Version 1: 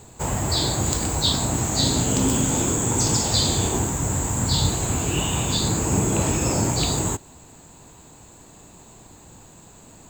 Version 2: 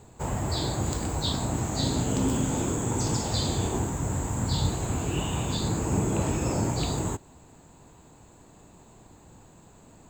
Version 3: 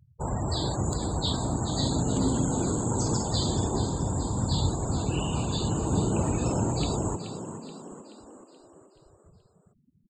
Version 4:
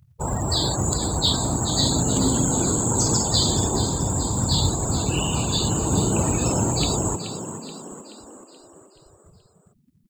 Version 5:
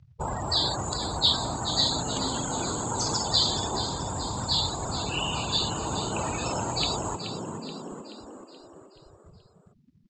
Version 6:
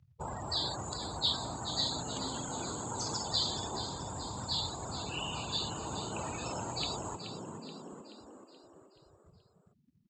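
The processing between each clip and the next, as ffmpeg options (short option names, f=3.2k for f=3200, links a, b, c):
-af "highshelf=f=2.6k:g=-8,volume=-4dB"
-filter_complex "[0:a]afftfilt=real='re*gte(hypot(re,im),0.02)':imag='im*gte(hypot(re,im),0.02)':win_size=1024:overlap=0.75,asplit=2[a][b];[b]asplit=6[c][d][e][f][g][h];[c]adelay=428,afreqshift=52,volume=-10.5dB[i];[d]adelay=856,afreqshift=104,volume=-16.2dB[j];[e]adelay=1284,afreqshift=156,volume=-21.9dB[k];[f]adelay=1712,afreqshift=208,volume=-27.5dB[l];[g]adelay=2140,afreqshift=260,volume=-33.2dB[m];[h]adelay=2568,afreqshift=312,volume=-38.9dB[n];[i][j][k][l][m][n]amix=inputs=6:normalize=0[o];[a][o]amix=inputs=2:normalize=0"
-filter_complex "[0:a]highshelf=f=2.3k:g=8.5,asplit=2[a][b];[b]acrusher=bits=4:mode=log:mix=0:aa=0.000001,volume=-5dB[c];[a][c]amix=inputs=2:normalize=0"
-filter_complex "[0:a]lowpass=f=5.7k:w=0.5412,lowpass=f=5.7k:w=1.3066,acrossover=split=630|3600[a][b][c];[a]acompressor=threshold=-33dB:ratio=5[d];[d][b][c]amix=inputs=3:normalize=0"
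-af "highpass=53,volume=-8.5dB"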